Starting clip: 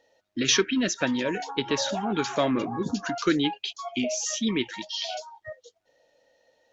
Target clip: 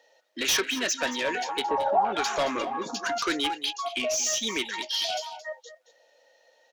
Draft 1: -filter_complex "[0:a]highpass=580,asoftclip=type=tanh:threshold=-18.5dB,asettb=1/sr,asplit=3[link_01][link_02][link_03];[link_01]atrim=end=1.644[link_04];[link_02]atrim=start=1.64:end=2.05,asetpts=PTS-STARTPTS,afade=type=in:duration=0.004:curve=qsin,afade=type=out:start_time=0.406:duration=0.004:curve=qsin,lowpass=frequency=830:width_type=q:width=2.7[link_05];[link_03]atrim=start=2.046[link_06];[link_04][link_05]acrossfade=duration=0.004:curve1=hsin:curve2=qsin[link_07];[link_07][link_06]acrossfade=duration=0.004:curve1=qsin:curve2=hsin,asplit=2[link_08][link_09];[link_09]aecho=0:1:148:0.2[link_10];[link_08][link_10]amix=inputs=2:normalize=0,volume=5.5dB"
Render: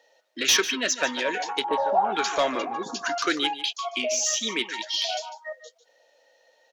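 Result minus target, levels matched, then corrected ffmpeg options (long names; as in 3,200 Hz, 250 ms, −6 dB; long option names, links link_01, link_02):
echo 74 ms early; soft clipping: distortion −7 dB
-filter_complex "[0:a]highpass=580,asoftclip=type=tanh:threshold=-26dB,asettb=1/sr,asplit=3[link_01][link_02][link_03];[link_01]atrim=end=1.644[link_04];[link_02]atrim=start=1.64:end=2.05,asetpts=PTS-STARTPTS,afade=type=in:duration=0.004:curve=qsin,afade=type=out:start_time=0.406:duration=0.004:curve=qsin,lowpass=frequency=830:width_type=q:width=2.7[link_05];[link_03]atrim=start=2.046[link_06];[link_04][link_05]acrossfade=duration=0.004:curve1=hsin:curve2=qsin[link_07];[link_07][link_06]acrossfade=duration=0.004:curve1=qsin:curve2=hsin,asplit=2[link_08][link_09];[link_09]aecho=0:1:222:0.2[link_10];[link_08][link_10]amix=inputs=2:normalize=0,volume=5.5dB"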